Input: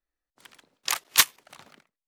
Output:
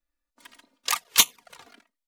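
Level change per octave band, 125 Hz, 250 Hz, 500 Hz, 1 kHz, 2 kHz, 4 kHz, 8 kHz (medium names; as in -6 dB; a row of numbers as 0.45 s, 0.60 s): +0.5 dB, +4.5 dB, +1.5 dB, +1.0 dB, -2.5 dB, +1.5 dB, +2.0 dB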